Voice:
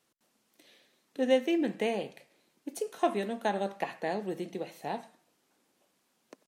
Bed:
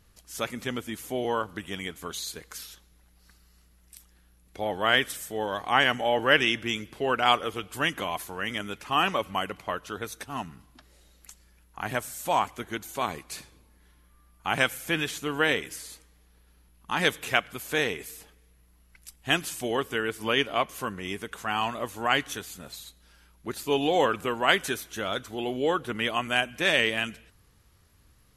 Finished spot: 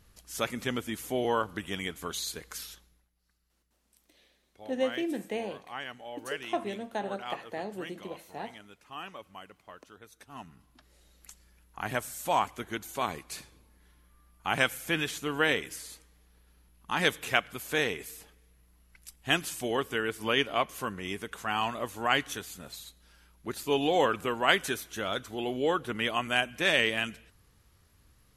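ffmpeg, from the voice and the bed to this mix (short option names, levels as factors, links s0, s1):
-filter_complex "[0:a]adelay=3500,volume=0.631[s0];[1:a]volume=5.96,afade=t=out:st=2.7:d=0.39:silence=0.133352,afade=t=in:st=10.1:d=1.16:silence=0.16788[s1];[s0][s1]amix=inputs=2:normalize=0"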